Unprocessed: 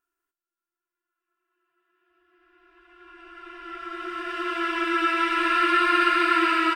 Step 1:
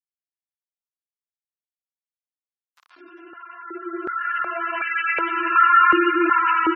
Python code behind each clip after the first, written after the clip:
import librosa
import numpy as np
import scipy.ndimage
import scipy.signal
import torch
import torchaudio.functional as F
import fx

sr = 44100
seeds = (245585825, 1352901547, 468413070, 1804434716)

y = fx.quant_dither(x, sr, seeds[0], bits=8, dither='none')
y = fx.spec_gate(y, sr, threshold_db=-15, keep='strong')
y = fx.filter_held_highpass(y, sr, hz=2.7, low_hz=280.0, high_hz=2000.0)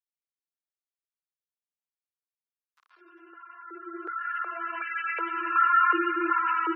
y = scipy.signal.sosfilt(scipy.signal.cheby1(6, 6, 320.0, 'highpass', fs=sr, output='sos'), x)
y = y * 10.0 ** (-6.5 / 20.0)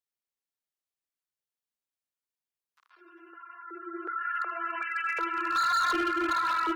y = np.clip(x, -10.0 ** (-24.0 / 20.0), 10.0 ** (-24.0 / 20.0))
y = fx.echo_feedback(y, sr, ms=77, feedback_pct=38, wet_db=-19.5)